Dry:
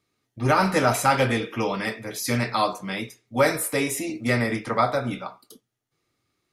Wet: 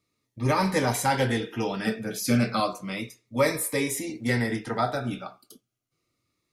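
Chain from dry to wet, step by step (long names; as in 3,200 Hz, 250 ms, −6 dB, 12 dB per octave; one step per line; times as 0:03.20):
0:01.85–0:02.60: hollow resonant body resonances 200/470/1,500 Hz, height 11 dB
phaser whose notches keep moving one way falling 0.32 Hz
level −1.5 dB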